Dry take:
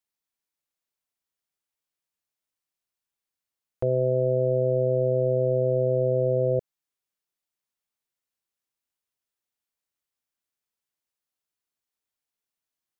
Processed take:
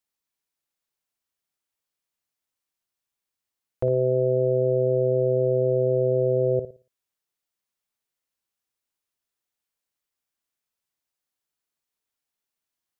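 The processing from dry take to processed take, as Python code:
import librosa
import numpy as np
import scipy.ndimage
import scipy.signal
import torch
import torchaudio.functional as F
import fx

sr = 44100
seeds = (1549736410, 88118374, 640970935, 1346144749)

y = fx.room_flutter(x, sr, wall_m=9.8, rt60_s=0.34)
y = y * 10.0 ** (1.5 / 20.0)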